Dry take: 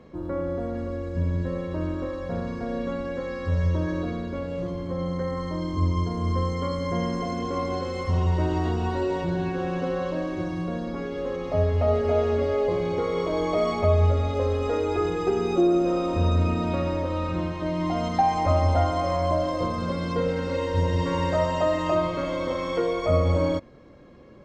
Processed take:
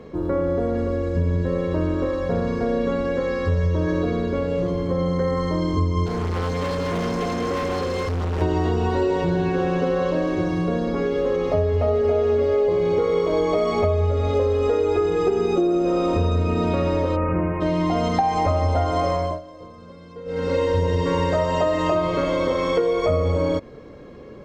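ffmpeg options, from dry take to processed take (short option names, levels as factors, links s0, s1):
-filter_complex "[0:a]asettb=1/sr,asplit=3[s0][s1][s2];[s0]atrim=end=6.064[s3];[s1]atrim=start=6.06:end=8.42,asetpts=PTS-STARTPTS,afade=t=in:d=0.004:c=qsin,afade=t=out:st=2.356:d=0.004:c=qsin,asoftclip=type=hard:threshold=0.0316[s4];[s2]atrim=start=8.416[s5];[s3][s4]acrossfade=d=0.004:c1=hsin:c2=qsin[s6];[s6][s5]acrossfade=d=0.004:c1=qsin:c2=hsin,asplit=3[s7][s8][s9];[s7]afade=t=out:st=17.15:d=0.02[s10];[s8]asuperstop=centerf=5300:order=12:qfactor=0.67,afade=t=in:st=17.15:d=0.02,afade=t=out:st=17.6:d=0.02[s11];[s9]afade=t=in:st=17.6:d=0.02[s12];[s10][s11][s12]amix=inputs=3:normalize=0,asplit=3[s13][s14][s15];[s13]atrim=end=19.41,asetpts=PTS-STARTPTS,afade=t=out:st=19.04:d=0.37:silence=0.0749894[s16];[s14]atrim=start=19.41:end=20.25,asetpts=PTS-STARTPTS,volume=0.075[s17];[s15]atrim=start=20.25,asetpts=PTS-STARTPTS,afade=t=in:d=0.37:silence=0.0749894[s18];[s16][s17][s18]concat=n=3:v=0:a=1,equalizer=f=440:w=7.5:g=10,acompressor=threshold=0.0631:ratio=6,volume=2.24"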